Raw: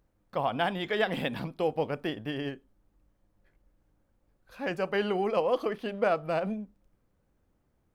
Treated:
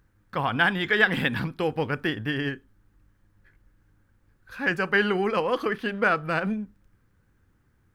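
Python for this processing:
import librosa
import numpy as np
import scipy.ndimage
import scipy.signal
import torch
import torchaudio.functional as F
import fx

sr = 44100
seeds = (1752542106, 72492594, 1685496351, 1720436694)

y = fx.graphic_eq_15(x, sr, hz=(100, 630, 1600), db=(7, -10, 9))
y = F.gain(torch.from_numpy(y), 5.5).numpy()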